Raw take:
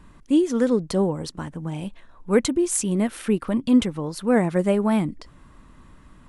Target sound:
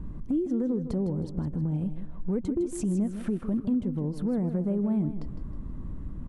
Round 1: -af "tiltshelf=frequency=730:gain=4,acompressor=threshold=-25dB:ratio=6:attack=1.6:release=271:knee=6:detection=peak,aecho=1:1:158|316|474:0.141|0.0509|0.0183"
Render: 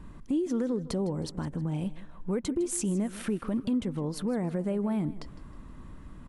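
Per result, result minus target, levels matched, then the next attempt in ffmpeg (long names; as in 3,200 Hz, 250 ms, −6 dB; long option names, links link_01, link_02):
1,000 Hz band +7.0 dB; echo-to-direct −6.5 dB
-af "tiltshelf=frequency=730:gain=14,acompressor=threshold=-25dB:ratio=6:attack=1.6:release=271:knee=6:detection=peak,aecho=1:1:158|316|474:0.141|0.0509|0.0183"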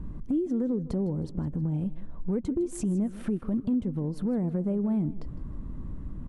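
echo-to-direct −6.5 dB
-af "tiltshelf=frequency=730:gain=14,acompressor=threshold=-25dB:ratio=6:attack=1.6:release=271:knee=6:detection=peak,aecho=1:1:158|316|474|632:0.299|0.107|0.0387|0.0139"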